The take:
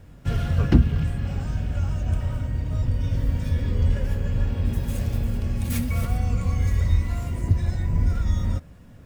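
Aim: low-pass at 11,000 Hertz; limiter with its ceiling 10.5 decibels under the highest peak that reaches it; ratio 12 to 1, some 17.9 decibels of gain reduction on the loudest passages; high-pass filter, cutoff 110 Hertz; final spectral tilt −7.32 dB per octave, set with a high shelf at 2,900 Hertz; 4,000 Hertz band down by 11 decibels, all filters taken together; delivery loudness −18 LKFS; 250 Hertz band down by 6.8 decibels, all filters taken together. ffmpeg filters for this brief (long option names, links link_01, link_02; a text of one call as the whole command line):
ffmpeg -i in.wav -af "highpass=110,lowpass=11000,equalizer=frequency=250:width_type=o:gain=-9,highshelf=frequency=2900:gain=-8,equalizer=frequency=4000:width_type=o:gain=-9,acompressor=threshold=-36dB:ratio=12,volume=27.5dB,alimiter=limit=-9.5dB:level=0:latency=1" out.wav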